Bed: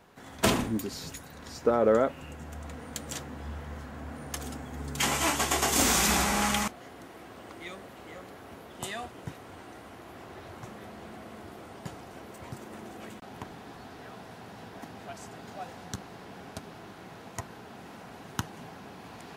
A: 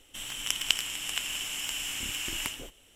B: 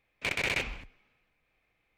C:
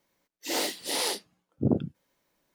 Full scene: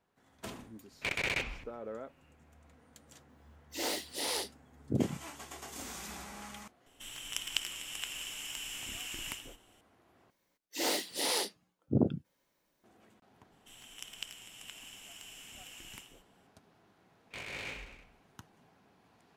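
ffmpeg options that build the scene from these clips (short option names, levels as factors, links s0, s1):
-filter_complex "[2:a]asplit=2[s0][s1];[3:a]asplit=2[s2][s3];[1:a]asplit=2[s4][s5];[0:a]volume=0.1[s6];[s1]aecho=1:1:20|43|69.45|99.87|134.8|175.1|221.3|274.5|335.7:0.794|0.631|0.501|0.398|0.316|0.251|0.2|0.158|0.126[s7];[s6]asplit=2[s8][s9];[s8]atrim=end=10.304[s10];[s3]atrim=end=2.54,asetpts=PTS-STARTPTS,volume=0.708[s11];[s9]atrim=start=12.836[s12];[s0]atrim=end=1.97,asetpts=PTS-STARTPTS,volume=0.708,afade=t=in:d=0.004:c=hsin,afade=t=out:st=1.966:d=0.004:c=hsin,adelay=800[s13];[s2]atrim=end=2.54,asetpts=PTS-STARTPTS,volume=0.501,afade=t=in:d=0.004:c=hsin,afade=t=out:st=2.536:d=0.004:c=hsin,adelay=145089S[s14];[s4]atrim=end=2.95,asetpts=PTS-STARTPTS,volume=0.422,afade=t=in:d=0.004:c=hsin,afade=t=out:st=2.946:d=0.004:c=hsin,adelay=6860[s15];[s5]atrim=end=2.95,asetpts=PTS-STARTPTS,volume=0.15,afade=t=in:d=0.004:c=hsin,afade=t=out:st=2.946:d=0.004:c=hsin,adelay=13520[s16];[s7]atrim=end=1.97,asetpts=PTS-STARTPTS,volume=0.178,afade=t=in:d=0.004:c=hsin,afade=t=out:st=1.966:d=0.004:c=hsin,adelay=17090[s17];[s10][s11]acrossfade=d=0.004:c1=hsin:c2=hsin[s18];[s18][s12]acrossfade=d=0.004:c1=hsin:c2=hsin[s19];[s19][s13][s14][s15][s16][s17]amix=inputs=6:normalize=0"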